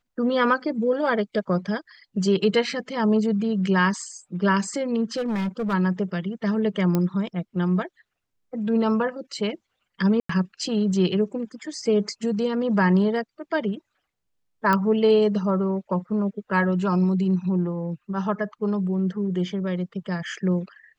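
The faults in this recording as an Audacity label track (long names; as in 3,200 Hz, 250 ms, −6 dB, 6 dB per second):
5.160000	5.740000	clipping −22.5 dBFS
6.950000	6.950000	click −11 dBFS
10.200000	10.290000	drop-out 94 ms
14.730000	14.730000	click −10 dBFS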